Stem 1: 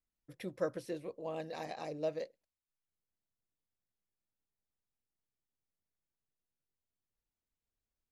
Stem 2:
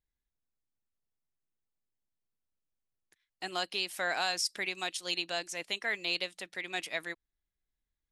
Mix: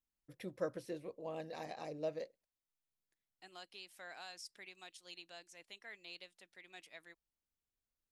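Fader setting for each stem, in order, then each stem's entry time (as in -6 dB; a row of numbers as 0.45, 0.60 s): -3.5, -19.0 dB; 0.00, 0.00 s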